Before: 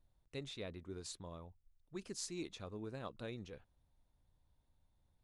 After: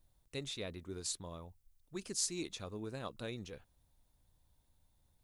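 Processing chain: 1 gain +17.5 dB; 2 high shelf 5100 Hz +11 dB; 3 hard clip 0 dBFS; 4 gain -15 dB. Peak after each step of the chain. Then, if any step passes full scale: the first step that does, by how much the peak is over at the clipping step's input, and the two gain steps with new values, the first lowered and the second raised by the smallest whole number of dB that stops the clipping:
-8.5, -3.0, -3.0, -18.0 dBFS; no overload

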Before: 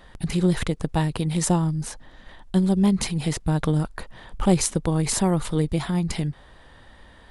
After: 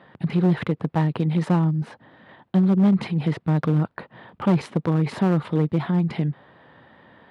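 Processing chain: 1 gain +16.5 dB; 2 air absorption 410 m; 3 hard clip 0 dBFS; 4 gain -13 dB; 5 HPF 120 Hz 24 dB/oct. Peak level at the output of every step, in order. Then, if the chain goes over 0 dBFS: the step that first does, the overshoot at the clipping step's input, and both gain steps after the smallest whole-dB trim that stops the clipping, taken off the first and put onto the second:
+12.0, +9.5, 0.0, -13.0, -9.0 dBFS; step 1, 9.5 dB; step 1 +6.5 dB, step 4 -3 dB

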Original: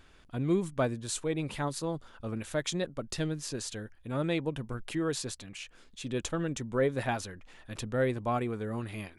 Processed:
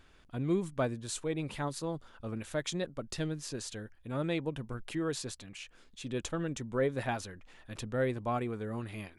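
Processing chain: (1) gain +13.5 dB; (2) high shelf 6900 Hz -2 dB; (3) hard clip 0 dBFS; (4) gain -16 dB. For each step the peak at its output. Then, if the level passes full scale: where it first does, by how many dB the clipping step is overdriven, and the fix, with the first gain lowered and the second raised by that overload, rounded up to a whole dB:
-4.0, -4.0, -4.0, -20.0 dBFS; no overload

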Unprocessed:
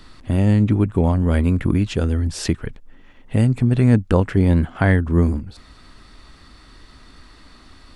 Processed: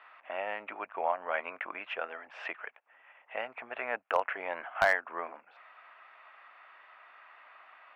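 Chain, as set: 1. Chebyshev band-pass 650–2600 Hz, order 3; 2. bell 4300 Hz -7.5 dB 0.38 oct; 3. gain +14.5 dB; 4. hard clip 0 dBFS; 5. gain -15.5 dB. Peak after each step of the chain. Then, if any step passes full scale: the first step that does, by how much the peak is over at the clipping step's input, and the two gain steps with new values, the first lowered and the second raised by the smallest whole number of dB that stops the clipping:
-7.0, -7.0, +7.5, 0.0, -15.5 dBFS; step 3, 7.5 dB; step 3 +6.5 dB, step 5 -7.5 dB

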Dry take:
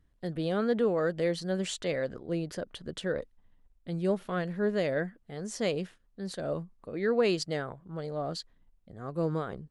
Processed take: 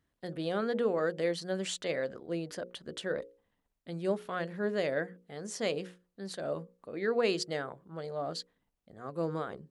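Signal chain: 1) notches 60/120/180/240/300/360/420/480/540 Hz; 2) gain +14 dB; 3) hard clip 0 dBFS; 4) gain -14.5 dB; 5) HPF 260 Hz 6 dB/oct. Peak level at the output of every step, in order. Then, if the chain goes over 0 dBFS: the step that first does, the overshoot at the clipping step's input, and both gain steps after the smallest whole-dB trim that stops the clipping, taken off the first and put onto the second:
-16.0, -2.0, -2.0, -16.5, -17.0 dBFS; no overload

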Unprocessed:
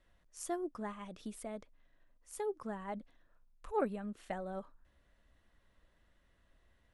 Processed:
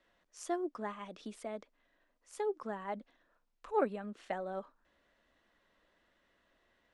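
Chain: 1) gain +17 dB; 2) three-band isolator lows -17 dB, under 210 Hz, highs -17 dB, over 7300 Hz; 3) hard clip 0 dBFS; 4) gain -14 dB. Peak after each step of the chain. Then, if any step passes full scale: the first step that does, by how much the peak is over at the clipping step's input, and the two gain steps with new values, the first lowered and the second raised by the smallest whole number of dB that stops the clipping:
-5.5, -5.0, -5.0, -19.0 dBFS; no overload

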